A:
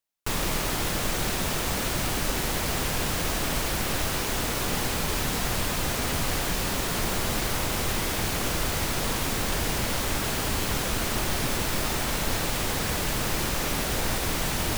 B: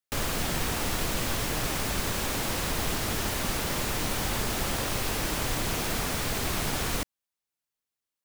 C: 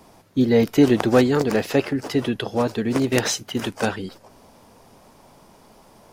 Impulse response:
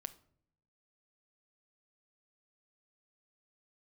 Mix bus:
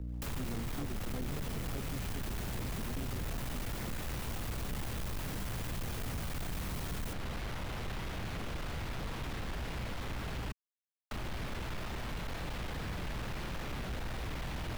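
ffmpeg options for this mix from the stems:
-filter_complex "[0:a]aeval=exprs='val(0)+0.0158*(sin(2*PI*60*n/s)+sin(2*PI*2*60*n/s)/2+sin(2*PI*3*60*n/s)/3+sin(2*PI*4*60*n/s)/4+sin(2*PI*5*60*n/s)/5)':c=same,acrossover=split=450|4000[a][b][c];[a]acompressor=threshold=-33dB:ratio=4[d];[b]acompressor=threshold=-34dB:ratio=4[e];[c]acompressor=threshold=-52dB:ratio=4[f];[d][e][f]amix=inputs=3:normalize=0,volume=0dB,asplit=3[g][h][i];[g]atrim=end=10.52,asetpts=PTS-STARTPTS,afade=t=out:st=10.516:d=0.004:c=hsin[j];[h]atrim=start=10.52:end=11.11,asetpts=PTS-STARTPTS,volume=0[k];[i]atrim=start=11.11,asetpts=PTS-STARTPTS,afade=t=in:d=0.004:c=hsin[l];[j][k][l]concat=n=3:v=0:a=1[m];[1:a]highshelf=f=11k:g=6.5,adelay=100,volume=-4.5dB[n];[2:a]acrusher=samples=31:mix=1:aa=0.000001:lfo=1:lforange=49.6:lforate=3.9,volume=-13.5dB[o];[m][n][o]amix=inputs=3:normalize=0,acrossover=split=200[p][q];[q]acompressor=threshold=-40dB:ratio=4[r];[p][r]amix=inputs=2:normalize=0,asoftclip=type=tanh:threshold=-32.5dB"

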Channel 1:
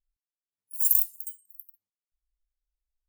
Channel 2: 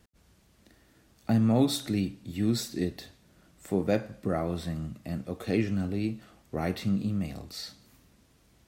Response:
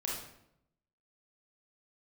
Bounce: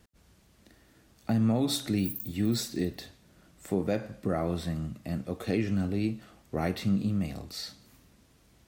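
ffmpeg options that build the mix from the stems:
-filter_complex "[0:a]acompressor=threshold=-23dB:ratio=6,asplit=2[a][b];[b]afreqshift=2.5[c];[a][c]amix=inputs=2:normalize=1,adelay=1250,volume=-10dB[d];[1:a]volume=1dB[e];[d][e]amix=inputs=2:normalize=0,alimiter=limit=-17.5dB:level=0:latency=1:release=97"

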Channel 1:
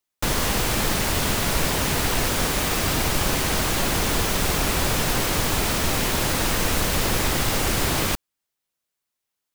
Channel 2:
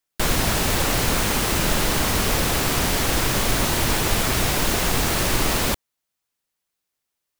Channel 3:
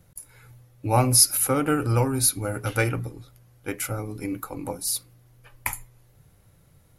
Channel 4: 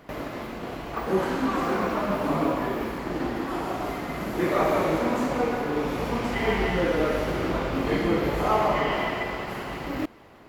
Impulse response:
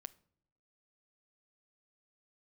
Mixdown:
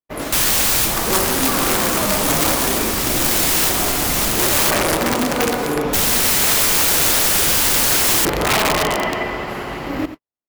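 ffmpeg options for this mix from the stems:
-filter_complex "[0:a]aemphasis=mode=production:type=cd,adelay=100,volume=-2.5dB,asplit=3[a][b][c];[a]atrim=end=4.71,asetpts=PTS-STARTPTS,afade=t=out:st=4.706:d=0.004:c=hsin[d];[b]atrim=start=4.71:end=5.93,asetpts=PTS-STARTPTS,volume=0[e];[c]atrim=start=5.93,asetpts=PTS-STARTPTS,afade=t=in:d=0.004:c=hsin[f];[d][e][f]concat=n=3:v=0:a=1[g];[1:a]volume=-9.5dB[h];[2:a]asoftclip=type=tanh:threshold=-23.5dB,volume=2dB,asplit=2[i][j];[3:a]bandreject=f=60:t=h:w=6,bandreject=f=120:t=h:w=6,bandreject=f=180:t=h:w=6,volume=0dB,asplit=2[k][l];[l]volume=-12dB[m];[j]apad=whole_len=425328[n];[g][n]sidechaincompress=threshold=-30dB:ratio=8:attack=26:release=1220[o];[h][i]amix=inputs=2:normalize=0,highpass=950,alimiter=level_in=5dB:limit=-24dB:level=0:latency=1,volume=-5dB,volume=0dB[p];[m]aecho=0:1:89:1[q];[o][k][p][q]amix=inputs=4:normalize=0,agate=range=-57dB:threshold=-35dB:ratio=16:detection=peak,acontrast=65,aeval=exprs='(mod(3.35*val(0)+1,2)-1)/3.35':c=same"

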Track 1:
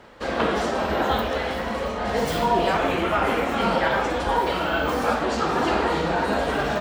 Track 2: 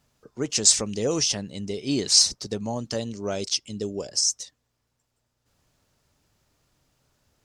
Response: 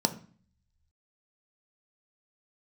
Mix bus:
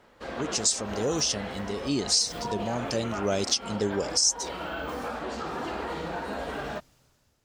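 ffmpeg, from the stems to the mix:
-filter_complex "[0:a]alimiter=limit=-14dB:level=0:latency=1:release=41,volume=-10dB[a];[1:a]dynaudnorm=f=210:g=7:m=14dB,volume=-5dB,asplit=2[b][c];[c]apad=whole_len=300116[d];[a][d]sidechaincompress=threshold=-29dB:ratio=4:attack=9:release=124[e];[e][b]amix=inputs=2:normalize=0,alimiter=limit=-11.5dB:level=0:latency=1:release=295"

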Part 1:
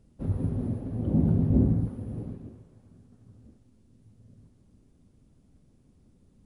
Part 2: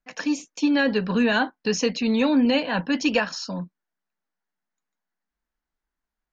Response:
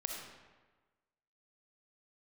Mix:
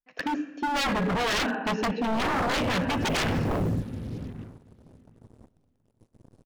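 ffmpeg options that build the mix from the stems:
-filter_complex "[0:a]acrusher=bits=7:mix=0:aa=0.5,adelay=1950,volume=-0.5dB,asplit=3[a][b][c];[b]volume=-18dB[d];[c]volume=-21dB[e];[1:a]lowpass=3.7k,afwtdn=0.0282,volume=-1dB,asplit=2[f][g];[g]volume=-3.5dB[h];[2:a]atrim=start_sample=2205[i];[d][h]amix=inputs=2:normalize=0[j];[j][i]afir=irnorm=-1:irlink=0[k];[e]aecho=0:1:726|1452|2178:1|0.16|0.0256[l];[a][f][k][l]amix=inputs=4:normalize=0,aeval=exprs='0.0891*(abs(mod(val(0)/0.0891+3,4)-2)-1)':c=same"

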